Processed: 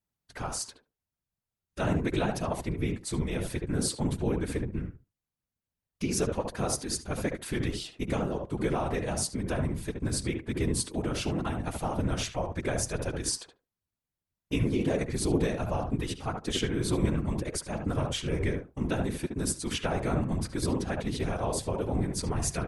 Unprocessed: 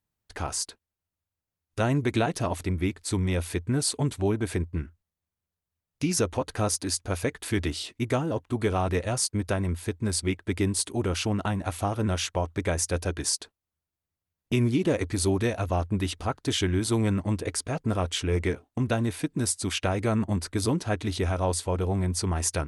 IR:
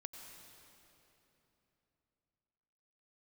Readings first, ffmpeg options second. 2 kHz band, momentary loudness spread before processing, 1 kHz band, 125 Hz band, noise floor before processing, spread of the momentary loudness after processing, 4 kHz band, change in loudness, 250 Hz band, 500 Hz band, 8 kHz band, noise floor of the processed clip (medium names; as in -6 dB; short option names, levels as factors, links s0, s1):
-3.5 dB, 5 LU, -3.5 dB, -4.0 dB, under -85 dBFS, 5 LU, -4.0 dB, -3.5 dB, -3.0 dB, -3.0 dB, -4.5 dB, under -85 dBFS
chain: -filter_complex "[0:a]asplit=2[s0][s1];[s1]adelay=72,lowpass=f=1300:p=1,volume=0.668,asplit=2[s2][s3];[s3]adelay=72,lowpass=f=1300:p=1,volume=0.16,asplit=2[s4][s5];[s5]adelay=72,lowpass=f=1300:p=1,volume=0.16[s6];[s0][s2][s4][s6]amix=inputs=4:normalize=0,afftfilt=real='hypot(re,im)*cos(2*PI*random(0))':imag='hypot(re,im)*sin(2*PI*random(1))':win_size=512:overlap=0.75,volume=1.26" -ar 48000 -c:a libmp3lame -b:a 80k